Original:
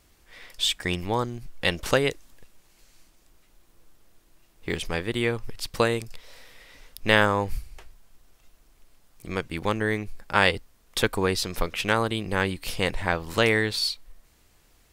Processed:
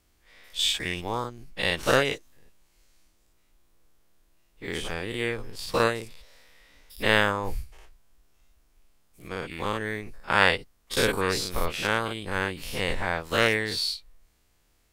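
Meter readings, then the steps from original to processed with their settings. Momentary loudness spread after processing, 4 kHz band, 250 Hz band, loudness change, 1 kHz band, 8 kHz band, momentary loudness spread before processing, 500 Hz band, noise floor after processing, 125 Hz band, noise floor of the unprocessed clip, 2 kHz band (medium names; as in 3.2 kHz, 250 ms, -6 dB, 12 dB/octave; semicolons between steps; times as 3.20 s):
14 LU, 0.0 dB, -3.5 dB, -1.0 dB, -0.5 dB, 0.0 dB, 11 LU, -1.5 dB, -66 dBFS, -4.0 dB, -61 dBFS, 0.0 dB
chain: every event in the spectrogram widened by 120 ms; upward expansion 1.5:1, over -29 dBFS; trim -4 dB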